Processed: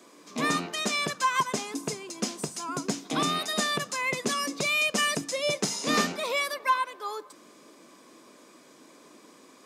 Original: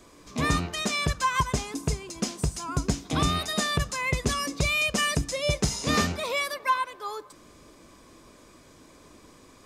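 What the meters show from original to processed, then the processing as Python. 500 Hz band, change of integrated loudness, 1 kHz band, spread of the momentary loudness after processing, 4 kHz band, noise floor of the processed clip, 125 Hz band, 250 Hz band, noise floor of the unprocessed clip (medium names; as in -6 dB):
0.0 dB, -1.0 dB, 0.0 dB, 9 LU, 0.0 dB, -55 dBFS, -11.5 dB, -2.0 dB, -53 dBFS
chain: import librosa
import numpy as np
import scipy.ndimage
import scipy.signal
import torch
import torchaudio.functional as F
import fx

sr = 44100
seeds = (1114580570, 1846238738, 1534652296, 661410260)

y = scipy.signal.sosfilt(scipy.signal.butter(4, 200.0, 'highpass', fs=sr, output='sos'), x)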